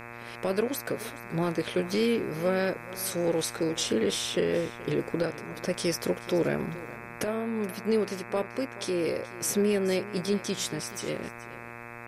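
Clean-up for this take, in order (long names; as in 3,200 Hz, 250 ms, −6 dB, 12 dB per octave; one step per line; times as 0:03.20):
click removal
hum removal 118.2 Hz, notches 22
echo removal 427 ms −17.5 dB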